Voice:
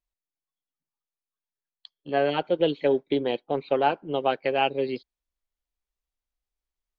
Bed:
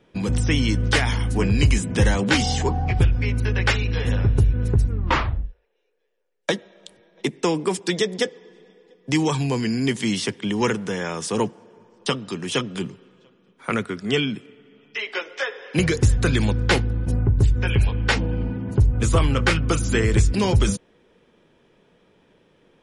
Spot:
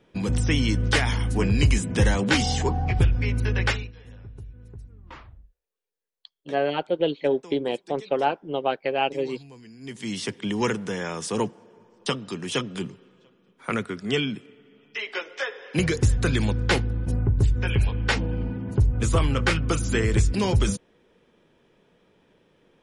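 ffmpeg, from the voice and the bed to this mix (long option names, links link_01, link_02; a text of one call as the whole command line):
ffmpeg -i stem1.wav -i stem2.wav -filter_complex "[0:a]adelay=4400,volume=-0.5dB[link_01];[1:a]volume=18.5dB,afade=type=out:start_time=3.63:duration=0.29:silence=0.0841395,afade=type=in:start_time=9.79:duration=0.59:silence=0.0944061[link_02];[link_01][link_02]amix=inputs=2:normalize=0" out.wav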